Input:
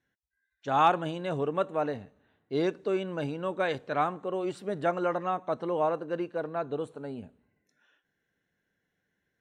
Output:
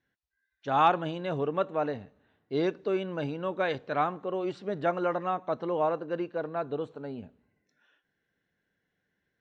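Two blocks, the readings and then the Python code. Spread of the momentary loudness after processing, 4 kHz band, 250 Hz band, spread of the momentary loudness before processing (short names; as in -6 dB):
9 LU, 0.0 dB, 0.0 dB, 9 LU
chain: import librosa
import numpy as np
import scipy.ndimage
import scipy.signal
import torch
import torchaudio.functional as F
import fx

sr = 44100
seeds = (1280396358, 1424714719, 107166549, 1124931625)

y = scipy.signal.sosfilt(scipy.signal.butter(4, 5700.0, 'lowpass', fs=sr, output='sos'), x)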